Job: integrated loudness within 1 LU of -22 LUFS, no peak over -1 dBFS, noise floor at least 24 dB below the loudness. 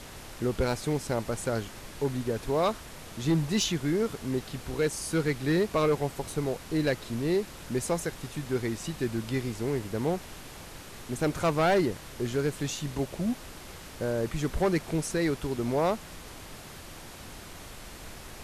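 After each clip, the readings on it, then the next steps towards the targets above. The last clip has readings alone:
clipped samples 0.7%; clipping level -19.0 dBFS; noise floor -45 dBFS; noise floor target -54 dBFS; loudness -30.0 LUFS; peak level -19.0 dBFS; loudness target -22.0 LUFS
-> clip repair -19 dBFS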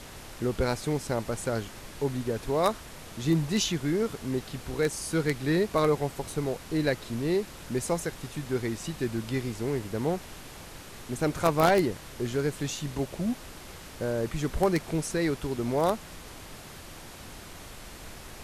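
clipped samples 0.0%; noise floor -45 dBFS; noise floor target -54 dBFS
-> noise print and reduce 9 dB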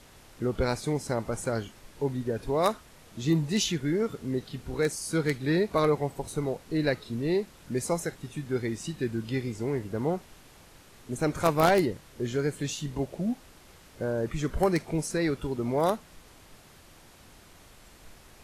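noise floor -54 dBFS; loudness -29.5 LUFS; peak level -10.0 dBFS; loudness target -22.0 LUFS
-> trim +7.5 dB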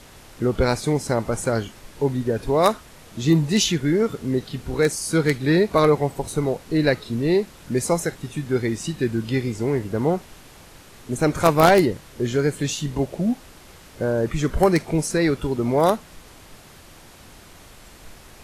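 loudness -22.0 LUFS; peak level -2.5 dBFS; noise floor -47 dBFS

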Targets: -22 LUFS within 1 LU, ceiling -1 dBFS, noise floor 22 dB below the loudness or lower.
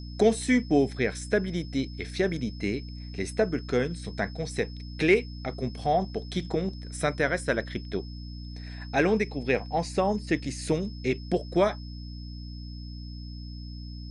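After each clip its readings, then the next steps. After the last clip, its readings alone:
hum 60 Hz; highest harmonic 300 Hz; hum level -36 dBFS; steady tone 5.2 kHz; tone level -49 dBFS; loudness -28.0 LUFS; peak level -9.5 dBFS; loudness target -22.0 LUFS
-> de-hum 60 Hz, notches 5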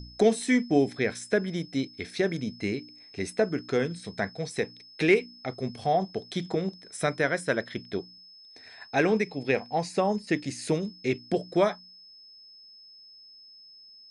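hum not found; steady tone 5.2 kHz; tone level -49 dBFS
-> band-stop 5.2 kHz, Q 30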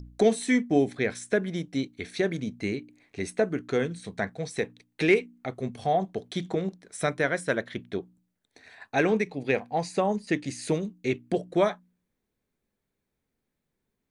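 steady tone not found; loudness -28.5 LUFS; peak level -10.0 dBFS; loudness target -22.0 LUFS
-> trim +6.5 dB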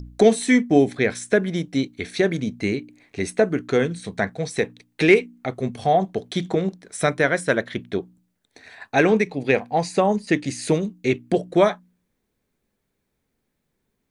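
loudness -22.0 LUFS; peak level -3.5 dBFS; noise floor -76 dBFS

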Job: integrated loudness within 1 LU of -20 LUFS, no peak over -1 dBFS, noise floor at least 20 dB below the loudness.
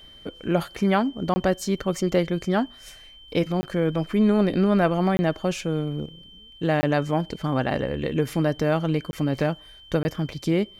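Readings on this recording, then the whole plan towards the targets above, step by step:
dropouts 6; longest dropout 20 ms; steady tone 3.1 kHz; tone level -46 dBFS; loudness -24.5 LUFS; peak level -7.0 dBFS; loudness target -20.0 LUFS
-> interpolate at 1.34/3.61/5.17/6.81/9.11/10.03 s, 20 ms; band-stop 3.1 kHz, Q 30; trim +4.5 dB

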